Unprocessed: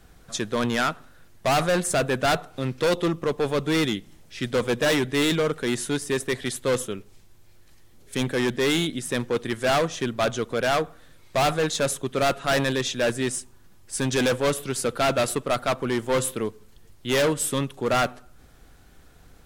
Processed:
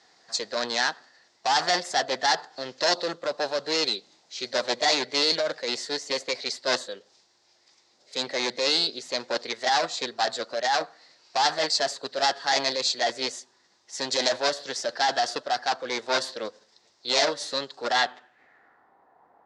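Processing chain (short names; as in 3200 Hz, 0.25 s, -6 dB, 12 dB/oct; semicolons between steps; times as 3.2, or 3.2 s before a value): speaker cabinet 480–6600 Hz, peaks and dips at 1200 Hz -4 dB, 2300 Hz -9 dB, 6200 Hz +4 dB; formant shift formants +3 st; low-pass sweep 5000 Hz -> 990 Hz, 17.9–18.96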